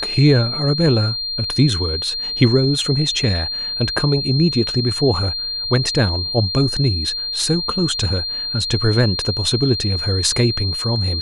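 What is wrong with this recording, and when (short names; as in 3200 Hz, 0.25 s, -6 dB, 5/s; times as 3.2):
tone 4200 Hz -22 dBFS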